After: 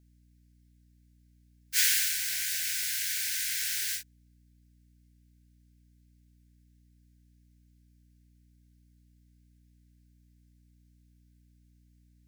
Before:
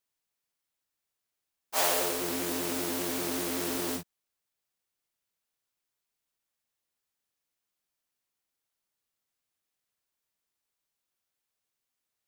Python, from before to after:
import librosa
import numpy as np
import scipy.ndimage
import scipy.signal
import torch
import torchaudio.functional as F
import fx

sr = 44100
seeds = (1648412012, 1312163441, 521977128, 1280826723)

y = scipy.signal.sosfilt(scipy.signal.cheby1(6, 3, 1500.0, 'highpass', fs=sr, output='sos'), x)
y = fx.spec_gate(y, sr, threshold_db=-20, keep='strong')
y = fx.add_hum(y, sr, base_hz=60, snr_db=25)
y = y * librosa.db_to_amplitude(6.0)